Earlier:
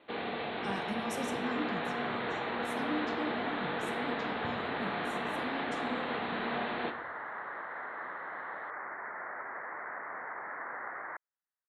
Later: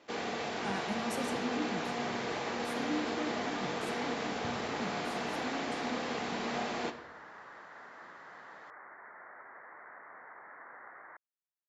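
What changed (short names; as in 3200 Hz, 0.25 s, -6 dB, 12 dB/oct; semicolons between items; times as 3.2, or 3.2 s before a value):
first sound: remove steep low-pass 4100 Hz 96 dB/oct; second sound -10.0 dB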